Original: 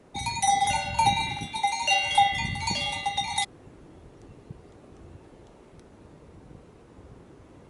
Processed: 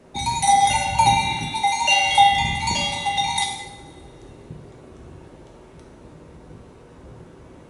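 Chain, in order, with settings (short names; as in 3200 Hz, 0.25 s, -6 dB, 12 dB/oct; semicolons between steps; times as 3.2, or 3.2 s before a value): two-slope reverb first 0.79 s, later 2.2 s, from -18 dB, DRR 0.5 dB; gain +3.5 dB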